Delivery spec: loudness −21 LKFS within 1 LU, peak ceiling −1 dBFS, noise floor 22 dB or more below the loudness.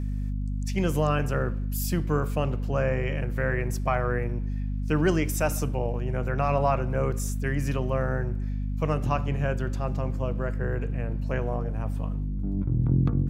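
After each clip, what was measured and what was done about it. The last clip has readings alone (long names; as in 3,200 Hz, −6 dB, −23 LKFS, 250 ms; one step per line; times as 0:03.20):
crackle rate 25 per second; mains hum 50 Hz; hum harmonics up to 250 Hz; level of the hum −26 dBFS; integrated loudness −28.0 LKFS; sample peak −11.5 dBFS; target loudness −21.0 LKFS
→ click removal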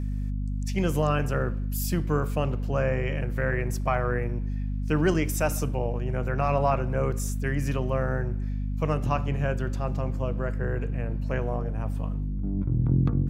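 crackle rate 0.075 per second; mains hum 50 Hz; hum harmonics up to 250 Hz; level of the hum −26 dBFS
→ mains-hum notches 50/100/150/200/250 Hz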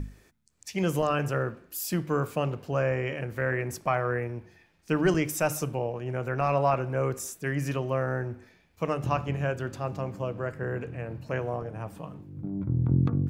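mains hum none found; integrated loudness −29.5 LKFS; sample peak −13.0 dBFS; target loudness −21.0 LKFS
→ level +8.5 dB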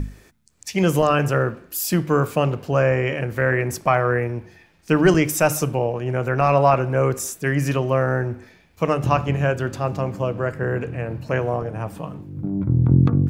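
integrated loudness −21.0 LKFS; sample peak −4.5 dBFS; background noise floor −54 dBFS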